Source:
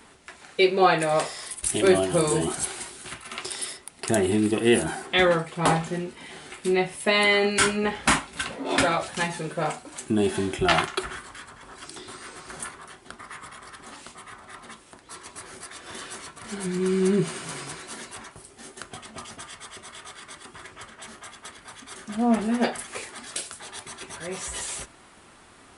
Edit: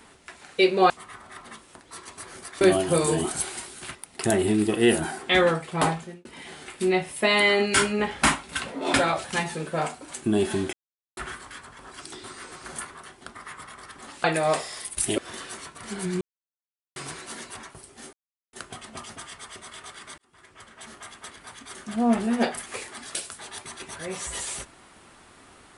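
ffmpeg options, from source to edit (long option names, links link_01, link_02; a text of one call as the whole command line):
ffmpeg -i in.wav -filter_complex "[0:a]asplit=13[link_01][link_02][link_03][link_04][link_05][link_06][link_07][link_08][link_09][link_10][link_11][link_12][link_13];[link_01]atrim=end=0.902[link_14];[link_02]atrim=start=14.078:end=15.792[link_15];[link_03]atrim=start=1.838:end=3.182[link_16];[link_04]atrim=start=3.788:end=6.09,asetpts=PTS-STARTPTS,afade=type=out:start_time=1.802:duration=0.5[link_17];[link_05]atrim=start=6.09:end=10.57,asetpts=PTS-STARTPTS,afade=type=in:duration=0.004:curve=hsin,afade=type=out:start_time=4.476:duration=0.004:curve=hsin[link_18];[link_06]atrim=start=10.57:end=11.01,asetpts=PTS-STARTPTS,volume=0[link_19];[link_07]atrim=start=11.01:end=14.082,asetpts=PTS-STARTPTS,afade=type=in:duration=0.004:curve=hsin[link_20];[link_08]atrim=start=0.898:end=1.842[link_21];[link_09]atrim=start=15.788:end=16.82,asetpts=PTS-STARTPTS,afade=type=out:start_time=1.028:duration=0.004:curve=hsin[link_22];[link_10]atrim=start=16.82:end=17.57,asetpts=PTS-STARTPTS,volume=0[link_23];[link_11]atrim=start=17.57:end=18.74,asetpts=PTS-STARTPTS,afade=type=in:duration=0.004:curve=hsin,afade=type=out:start_time=1.166:duration=0.004:curve=hsin,apad=pad_dur=0.4[link_24];[link_12]atrim=start=18.74:end=20.39,asetpts=PTS-STARTPTS,afade=type=in:duration=0.004:curve=hsin,afade=type=out:start_time=1.646:duration=0.004:curve=hsin[link_25];[link_13]atrim=start=20.39,asetpts=PTS-STARTPTS,afade=type=in:duration=0.81[link_26];[link_14][link_15]acrossfade=duration=0.004:curve1=hsin:curve2=hsin[link_27];[link_27][link_16]acrossfade=duration=0.004:curve1=hsin:curve2=hsin[link_28];[link_17][link_18][link_19][link_20]concat=n=4:v=0:a=1[link_29];[link_28][link_29]acrossfade=duration=0.004:curve1=hsin:curve2=hsin[link_30];[link_30][link_21]acrossfade=duration=0.004:curve1=hsin:curve2=hsin[link_31];[link_22][link_23][link_24][link_25][link_26]concat=n=5:v=0:a=1[link_32];[link_31][link_32]acrossfade=duration=0.004:curve1=hsin:curve2=hsin" out.wav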